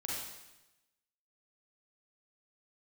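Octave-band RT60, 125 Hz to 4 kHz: 1.1 s, 1.0 s, 1.0 s, 0.95 s, 1.0 s, 0.95 s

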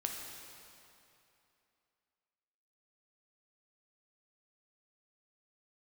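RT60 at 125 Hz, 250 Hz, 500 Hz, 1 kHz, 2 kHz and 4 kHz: 2.7 s, 2.7 s, 2.8 s, 2.9 s, 2.7 s, 2.4 s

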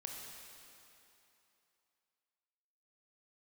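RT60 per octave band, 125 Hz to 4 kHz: 2.6 s, 2.8 s, 2.9 s, 3.0 s, 2.8 s, 2.7 s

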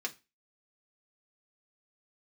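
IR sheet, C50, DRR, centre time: 19.0 dB, 0.0 dB, 6 ms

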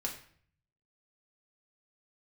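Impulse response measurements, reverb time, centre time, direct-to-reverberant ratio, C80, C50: 0.55 s, 20 ms, -1.0 dB, 12.0 dB, 8.5 dB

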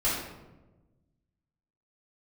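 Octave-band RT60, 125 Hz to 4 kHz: 1.9 s, 1.6 s, 1.3 s, 0.95 s, 0.80 s, 0.60 s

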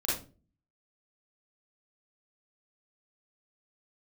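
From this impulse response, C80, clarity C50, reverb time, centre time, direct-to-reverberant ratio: 9.0 dB, 0.0 dB, 0.35 s, 49 ms, -7.5 dB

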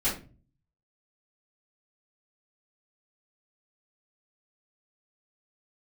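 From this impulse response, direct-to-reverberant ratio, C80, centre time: -11.0 dB, 13.5 dB, 33 ms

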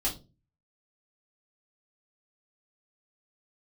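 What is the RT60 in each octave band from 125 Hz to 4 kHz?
0.55 s, 0.45 s, 0.35 s, 0.25 s, 0.20 s, 0.25 s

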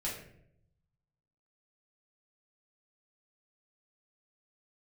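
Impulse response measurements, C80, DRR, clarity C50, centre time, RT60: 8.0 dB, -6.0 dB, 4.5 dB, 40 ms, 0.70 s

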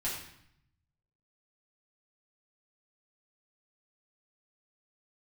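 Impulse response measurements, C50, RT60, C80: 3.0 dB, 0.70 s, 6.0 dB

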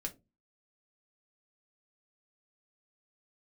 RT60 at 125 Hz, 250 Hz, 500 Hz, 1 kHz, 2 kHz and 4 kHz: 0.45 s, 0.40 s, 0.30 s, 0.20 s, 0.15 s, 0.15 s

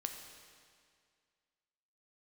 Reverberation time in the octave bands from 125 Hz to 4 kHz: 2.1 s, 2.1 s, 2.1 s, 2.1 s, 2.0 s, 1.9 s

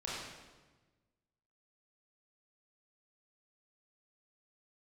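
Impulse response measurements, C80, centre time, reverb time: 1.0 dB, 93 ms, 1.3 s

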